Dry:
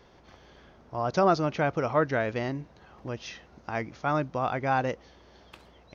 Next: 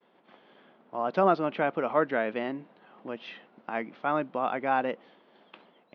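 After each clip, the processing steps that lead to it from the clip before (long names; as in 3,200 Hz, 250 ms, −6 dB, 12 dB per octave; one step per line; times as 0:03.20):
elliptic band-pass filter 200–3,300 Hz, stop band 50 dB
downward expander −53 dBFS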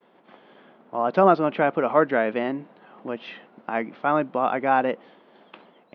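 high-shelf EQ 3,500 Hz −7 dB
level +6.5 dB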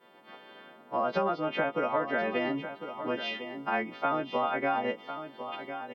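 every partial snapped to a pitch grid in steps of 2 semitones
downward compressor 12 to 1, threshold −25 dBFS, peak gain reduction 14 dB
single-tap delay 1,052 ms −10 dB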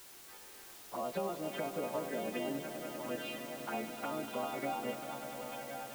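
flanger swept by the level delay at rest 2.9 ms, full sweep at −25.5 dBFS
bit-depth reduction 8 bits, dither triangular
echo that builds up and dies away 99 ms, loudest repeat 5, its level −12.5 dB
level −6.5 dB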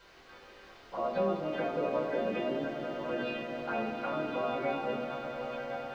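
high-frequency loss of the air 240 metres
convolution reverb RT60 0.80 s, pre-delay 4 ms, DRR −3 dB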